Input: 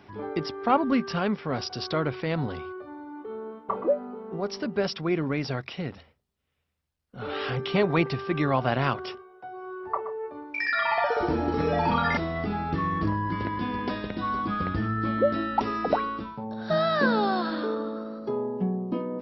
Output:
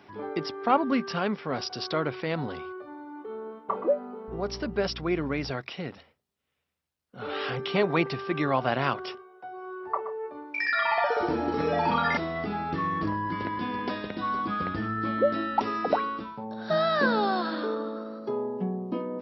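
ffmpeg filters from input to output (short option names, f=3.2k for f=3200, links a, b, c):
-filter_complex "[0:a]highpass=f=210:p=1,asettb=1/sr,asplit=3[a][b][c];[a]atrim=end=4.284[d];[b]atrim=start=4.28:end=5.51,asetpts=PTS-STARTPTS,afade=t=in:d=0.004:c=qsin,afade=t=out:st=1.226:d=0.004:c=qsin,aeval=exprs='val(0)+0.00891*(sin(2*PI*60*n/s)+sin(2*PI*2*60*n/s)/2+sin(2*PI*3*60*n/s)/3+sin(2*PI*4*60*n/s)/4+sin(2*PI*5*60*n/s)/5)':c=same[e];[c]atrim=start=5.506[f];[d][e]acrossfade=d=0.004:c1=hsin:c2=qsin[g];[g][f]acrossfade=d=0.004:c1=qsin:c2=hsin"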